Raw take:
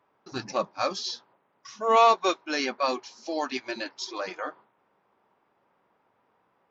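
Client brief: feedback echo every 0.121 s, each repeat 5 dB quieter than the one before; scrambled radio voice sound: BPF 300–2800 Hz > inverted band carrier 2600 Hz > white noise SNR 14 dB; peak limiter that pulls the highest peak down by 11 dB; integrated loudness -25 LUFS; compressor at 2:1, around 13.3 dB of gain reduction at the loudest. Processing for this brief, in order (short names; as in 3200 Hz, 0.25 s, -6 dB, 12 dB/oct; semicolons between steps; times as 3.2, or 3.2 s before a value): compressor 2:1, threshold -40 dBFS; limiter -32.5 dBFS; BPF 300–2800 Hz; feedback echo 0.121 s, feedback 56%, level -5 dB; inverted band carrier 2600 Hz; white noise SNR 14 dB; gain +17 dB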